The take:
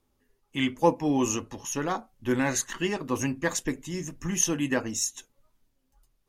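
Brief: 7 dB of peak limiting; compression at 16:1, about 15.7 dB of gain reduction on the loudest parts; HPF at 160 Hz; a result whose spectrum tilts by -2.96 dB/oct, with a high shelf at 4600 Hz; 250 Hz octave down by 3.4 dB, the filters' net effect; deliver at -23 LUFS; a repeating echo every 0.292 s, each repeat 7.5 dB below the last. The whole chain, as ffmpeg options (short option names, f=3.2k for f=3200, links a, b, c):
-af "highpass=160,equalizer=f=250:t=o:g=-3.5,highshelf=f=4.6k:g=6,acompressor=threshold=-32dB:ratio=16,alimiter=level_in=2.5dB:limit=-24dB:level=0:latency=1,volume=-2.5dB,aecho=1:1:292|584|876|1168|1460:0.422|0.177|0.0744|0.0312|0.0131,volume=15dB"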